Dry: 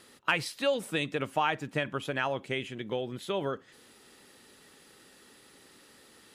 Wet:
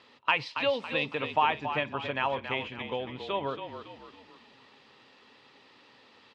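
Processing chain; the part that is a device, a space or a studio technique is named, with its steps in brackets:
frequency-shifting delay pedal into a guitar cabinet (echo with shifted repeats 278 ms, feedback 43%, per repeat −37 Hz, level −8.5 dB; loudspeaker in its box 110–4,500 Hz, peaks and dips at 180 Hz −9 dB, 350 Hz −7 dB, 970 Hz +8 dB, 1,500 Hz −5 dB, 2,600 Hz +4 dB)

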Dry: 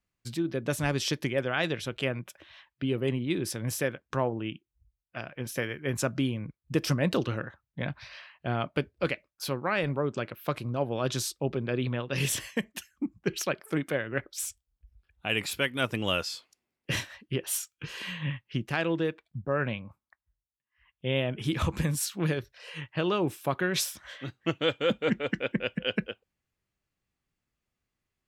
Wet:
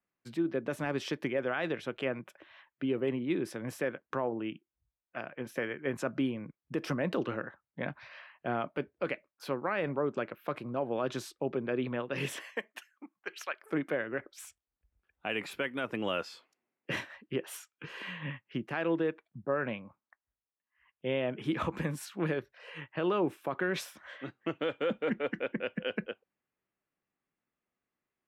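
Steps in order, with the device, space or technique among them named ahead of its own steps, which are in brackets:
0:12.32–0:13.61: high-pass filter 400 Hz → 1,200 Hz 12 dB per octave
DJ mixer with the lows and highs turned down (three-way crossover with the lows and the highs turned down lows −18 dB, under 180 Hz, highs −15 dB, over 2,500 Hz; brickwall limiter −21 dBFS, peak gain reduction 6.5 dB)

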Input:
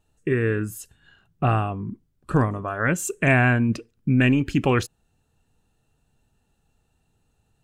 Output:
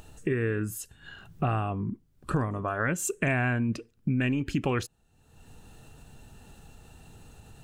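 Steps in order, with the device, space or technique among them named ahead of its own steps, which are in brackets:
upward and downward compression (upward compression, threshold −34 dBFS; downward compressor 4 to 1, threshold −25 dBFS, peak gain reduction 9.5 dB)

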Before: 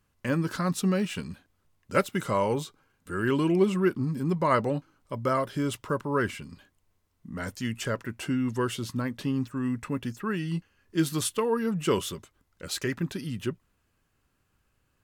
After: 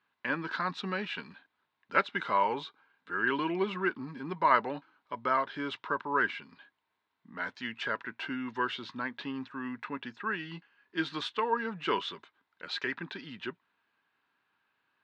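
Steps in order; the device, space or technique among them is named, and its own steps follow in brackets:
phone earpiece (loudspeaker in its box 340–4,000 Hz, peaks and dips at 360 Hz −3 dB, 530 Hz −7 dB, 930 Hz +7 dB, 1,600 Hz +7 dB, 2,300 Hz +3 dB, 3,800 Hz +6 dB)
level −2.5 dB

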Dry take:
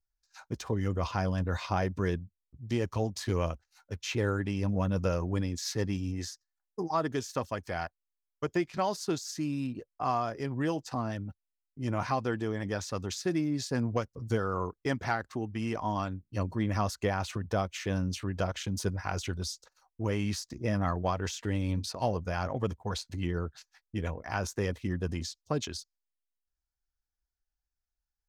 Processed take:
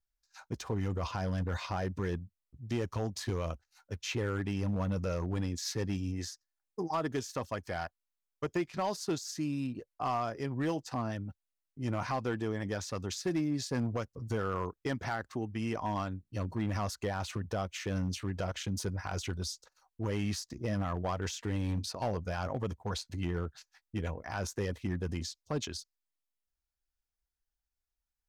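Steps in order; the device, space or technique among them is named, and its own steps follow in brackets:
limiter into clipper (brickwall limiter −20.5 dBFS, peak gain reduction 4.5 dB; hard clipping −24 dBFS, distortion −20 dB)
level −1.5 dB

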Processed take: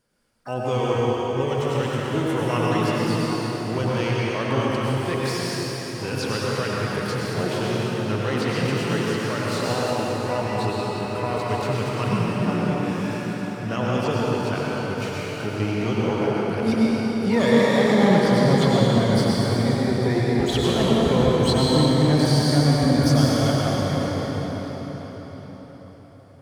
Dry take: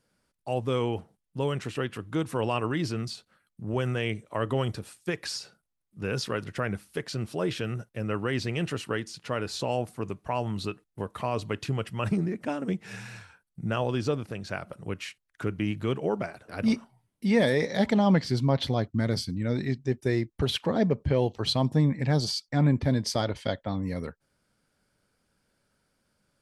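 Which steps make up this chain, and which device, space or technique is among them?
shimmer-style reverb (pitch-shifted copies added +12 semitones −11 dB; convolution reverb RT60 5.4 s, pre-delay 86 ms, DRR −6 dB)

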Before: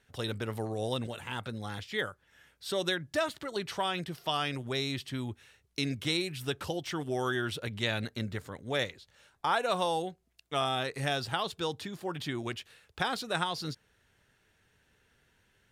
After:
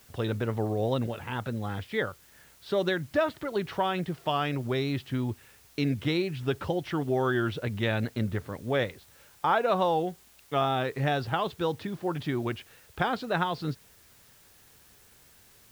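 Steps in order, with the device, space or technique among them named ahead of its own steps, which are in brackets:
cassette deck with a dirty head (head-to-tape spacing loss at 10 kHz 30 dB; tape wow and flutter; white noise bed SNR 28 dB)
level +7 dB

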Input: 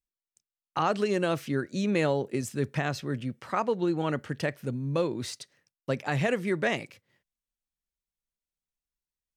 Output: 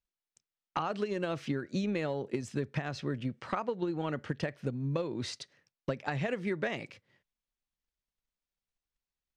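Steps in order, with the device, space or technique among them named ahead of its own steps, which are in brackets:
low-pass filter 5,500 Hz 12 dB per octave
drum-bus smash (transient designer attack +7 dB, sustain +1 dB; downward compressor, threshold −29 dBFS, peak gain reduction 11.5 dB; soft clipping −17.5 dBFS, distortion −24 dB)

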